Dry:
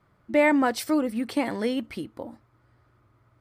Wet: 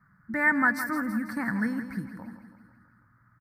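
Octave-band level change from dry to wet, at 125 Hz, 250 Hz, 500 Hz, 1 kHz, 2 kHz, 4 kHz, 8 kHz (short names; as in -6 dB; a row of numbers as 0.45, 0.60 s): +5.0 dB, -4.0 dB, -15.0 dB, -2.5 dB, +5.0 dB, under -10 dB, -7.5 dB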